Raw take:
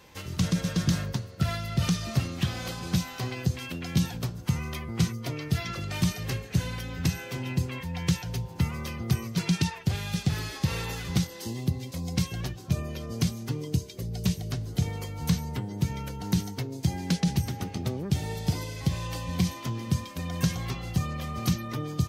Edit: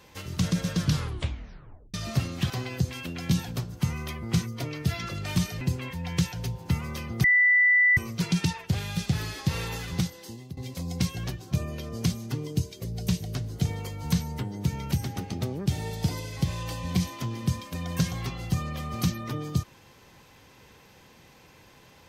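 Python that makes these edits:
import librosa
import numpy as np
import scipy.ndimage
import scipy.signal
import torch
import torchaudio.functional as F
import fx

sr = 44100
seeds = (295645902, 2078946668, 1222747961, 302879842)

y = fx.edit(x, sr, fx.tape_stop(start_s=0.79, length_s=1.15),
    fx.cut(start_s=2.5, length_s=0.66),
    fx.cut(start_s=6.27, length_s=1.24),
    fx.insert_tone(at_s=9.14, length_s=0.73, hz=1980.0, db=-16.5),
    fx.fade_out_to(start_s=11.03, length_s=0.71, floor_db=-16.0),
    fx.cut(start_s=16.09, length_s=1.27), tone=tone)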